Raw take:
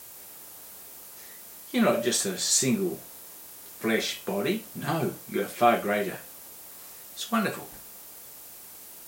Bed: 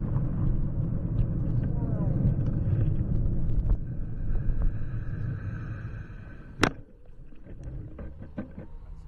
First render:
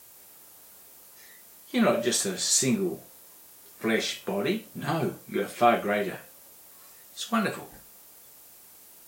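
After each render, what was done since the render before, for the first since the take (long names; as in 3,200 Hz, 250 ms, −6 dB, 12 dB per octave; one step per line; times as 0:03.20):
noise reduction from a noise print 6 dB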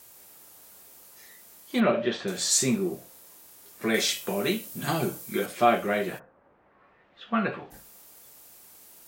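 0:01.80–0:02.28: low-pass filter 3,400 Hz 24 dB per octave
0:03.94–0:05.46: high-shelf EQ 4,300 Hz +10 dB
0:06.18–0:07.70: low-pass filter 1,400 Hz → 3,500 Hz 24 dB per octave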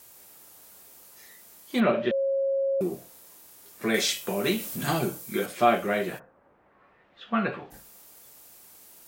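0:02.11–0:02.81: beep over 545 Hz −22.5 dBFS
0:04.44–0:04.99: converter with a step at zero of −36 dBFS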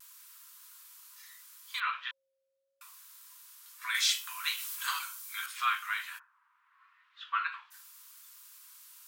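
Chebyshev high-pass with heavy ripple 980 Hz, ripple 3 dB
pitch vibrato 0.75 Hz 27 cents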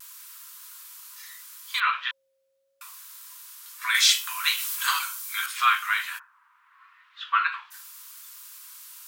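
level +9 dB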